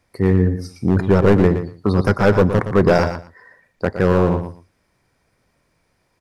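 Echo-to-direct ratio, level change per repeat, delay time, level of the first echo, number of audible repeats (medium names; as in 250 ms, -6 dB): -9.5 dB, -16.0 dB, 118 ms, -9.5 dB, 2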